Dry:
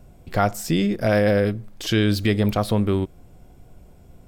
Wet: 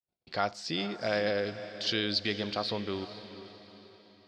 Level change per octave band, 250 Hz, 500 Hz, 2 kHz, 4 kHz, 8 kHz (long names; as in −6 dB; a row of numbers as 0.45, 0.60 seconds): −14.5, −10.5, −7.0, −1.0, −13.0 decibels